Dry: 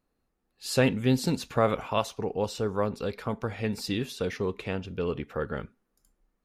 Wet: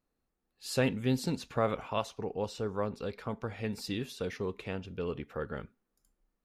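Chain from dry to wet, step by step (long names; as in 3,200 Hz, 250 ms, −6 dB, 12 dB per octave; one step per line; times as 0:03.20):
0:01.24–0:03.55: high-shelf EQ 11,000 Hz −9 dB
level −5.5 dB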